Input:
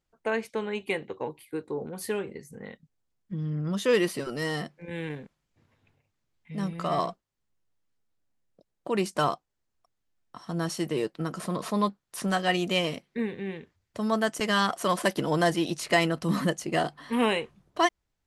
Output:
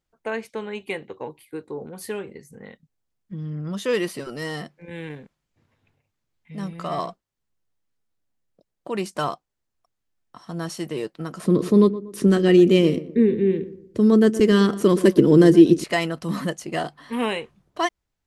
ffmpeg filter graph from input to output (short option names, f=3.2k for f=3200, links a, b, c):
-filter_complex "[0:a]asettb=1/sr,asplit=3[a][b][c];[a]atrim=end=11.464[d];[b]atrim=start=11.46:end=15.84,asetpts=PTS-STARTPTS,afade=t=in:d=0.004:c=qsin,afade=t=out:st=4.376:d=0.004:c=qsin,lowshelf=f=530:t=q:w=3:g=10.5,asplit=2[e][f];[f]adelay=119,lowpass=f=1.3k:p=1,volume=-14dB,asplit=2[g][h];[h]adelay=119,lowpass=f=1.3k:p=1,volume=0.39,asplit=2[i][j];[j]adelay=119,lowpass=f=1.3k:p=1,volume=0.39,asplit=2[k][l];[l]adelay=119,lowpass=f=1.3k:p=1,volume=0.39[m];[e][g][i][k][m]amix=inputs=5:normalize=0,atrim=end_sample=193158[n];[c]atrim=start=15.836[o];[d][n]acrossfade=d=0.004:c1=hsin:c2=qsin[p];[p][o]acrossfade=d=0.004:c1=qsin:c2=hsin"